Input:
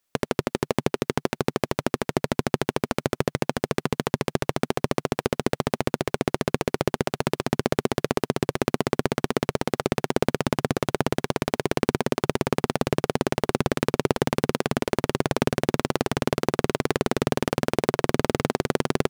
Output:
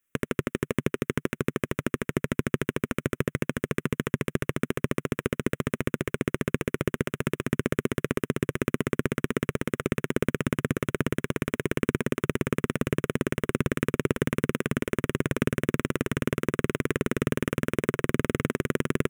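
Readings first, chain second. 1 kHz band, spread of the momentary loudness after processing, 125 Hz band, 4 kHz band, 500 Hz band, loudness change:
-9.0 dB, 3 LU, -0.5 dB, -7.5 dB, -4.5 dB, -3.0 dB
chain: static phaser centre 1.9 kHz, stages 4

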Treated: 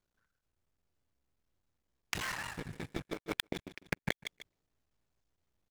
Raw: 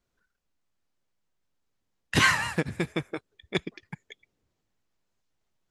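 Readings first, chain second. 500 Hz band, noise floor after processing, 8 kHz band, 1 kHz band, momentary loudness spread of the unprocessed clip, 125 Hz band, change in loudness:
-9.0 dB, under -85 dBFS, -10.0 dB, -12.5 dB, 24 LU, -11.5 dB, -13.0 dB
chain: cycle switcher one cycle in 3, muted; waveshaping leveller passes 5; feedback delay 148 ms, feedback 22%, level -15 dB; inverted gate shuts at -19 dBFS, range -31 dB; trim +6.5 dB

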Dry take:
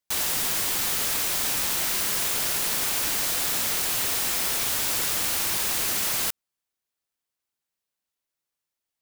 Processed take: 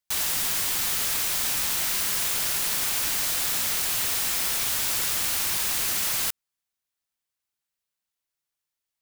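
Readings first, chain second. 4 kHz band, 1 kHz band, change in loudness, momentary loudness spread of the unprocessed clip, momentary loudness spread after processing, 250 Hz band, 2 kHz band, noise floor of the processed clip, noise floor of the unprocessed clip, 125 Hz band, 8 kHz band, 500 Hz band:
0.0 dB, -2.0 dB, 0.0 dB, 0 LU, 0 LU, -4.0 dB, -0.5 dB, under -85 dBFS, under -85 dBFS, -1.5 dB, 0.0 dB, -4.5 dB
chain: peaking EQ 390 Hz -5 dB 2.3 oct

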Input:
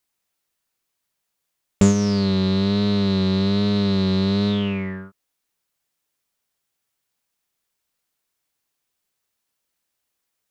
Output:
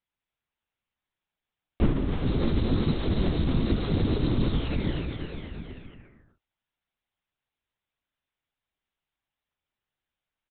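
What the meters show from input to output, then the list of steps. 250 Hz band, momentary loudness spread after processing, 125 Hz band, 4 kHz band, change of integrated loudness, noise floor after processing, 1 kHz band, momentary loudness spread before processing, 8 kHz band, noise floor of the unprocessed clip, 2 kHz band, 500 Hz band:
-8.5 dB, 13 LU, -4.5 dB, -10.5 dB, -7.5 dB, under -85 dBFS, -5.5 dB, 6 LU, no reading, -79 dBFS, -6.5 dB, -7.5 dB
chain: bouncing-ball echo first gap 310 ms, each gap 0.9×, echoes 5; LPC vocoder at 8 kHz whisper; trim -7 dB

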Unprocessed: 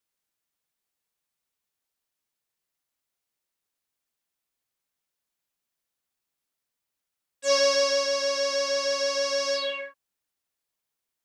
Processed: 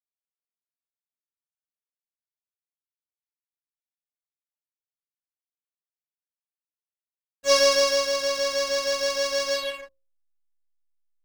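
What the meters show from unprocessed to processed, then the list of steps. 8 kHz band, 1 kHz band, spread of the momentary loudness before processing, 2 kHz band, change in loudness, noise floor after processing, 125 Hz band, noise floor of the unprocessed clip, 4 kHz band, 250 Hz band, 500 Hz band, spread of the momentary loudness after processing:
+2.5 dB, +2.5 dB, 10 LU, +2.0 dB, +2.0 dB, under -85 dBFS, no reading, -85 dBFS, +2.0 dB, +2.5 dB, +1.5 dB, 11 LU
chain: hysteresis with a dead band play -33 dBFS; hum notches 60/120/180/240/300/360/420/480/540 Hz; power-law waveshaper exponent 1.4; trim +6 dB

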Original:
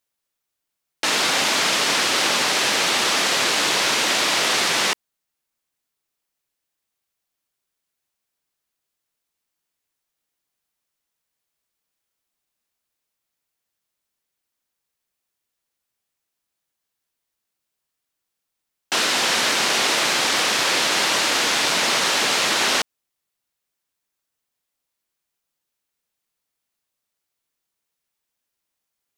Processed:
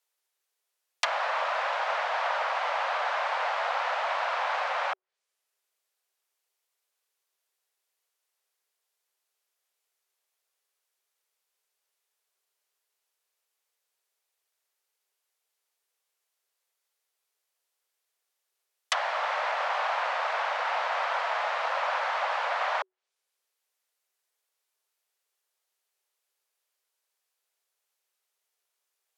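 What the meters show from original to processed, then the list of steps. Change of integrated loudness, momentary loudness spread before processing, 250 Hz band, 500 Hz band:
-11.0 dB, 2 LU, under -40 dB, -6.0 dB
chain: frequency shift +370 Hz; low-pass that closes with the level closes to 1.1 kHz, closed at -21 dBFS

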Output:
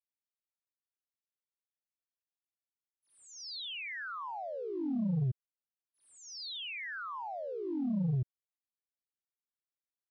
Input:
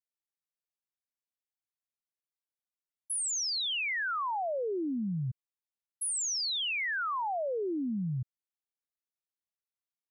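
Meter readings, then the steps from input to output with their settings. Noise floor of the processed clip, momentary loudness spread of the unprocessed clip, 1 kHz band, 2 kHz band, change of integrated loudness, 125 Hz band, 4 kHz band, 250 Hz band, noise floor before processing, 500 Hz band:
under -85 dBFS, 7 LU, -8.0 dB, -8.5 dB, -5.5 dB, +2.5 dB, -9.5 dB, 0.0 dB, under -85 dBFS, -6.0 dB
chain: bass shelf 360 Hz +6 dB; gate -29 dBFS, range -9 dB; on a send: reverse echo 75 ms -9 dB; on the sum: waveshaping leveller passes 1; low-pass 5.1 kHz 24 dB/octave; trim -4 dB

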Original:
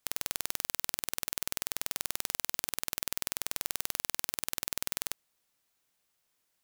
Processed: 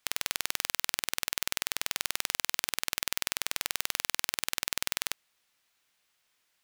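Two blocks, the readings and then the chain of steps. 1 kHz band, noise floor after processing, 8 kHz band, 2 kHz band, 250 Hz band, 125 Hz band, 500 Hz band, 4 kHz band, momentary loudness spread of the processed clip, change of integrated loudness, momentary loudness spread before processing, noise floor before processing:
+4.5 dB, -75 dBFS, +2.5 dB, +7.5 dB, -0.5 dB, -1.0 dB, +1.5 dB, +6.5 dB, 1 LU, +2.5 dB, 1 LU, -78 dBFS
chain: peaking EQ 2.4 kHz +9 dB 2.9 oct; trim -1 dB

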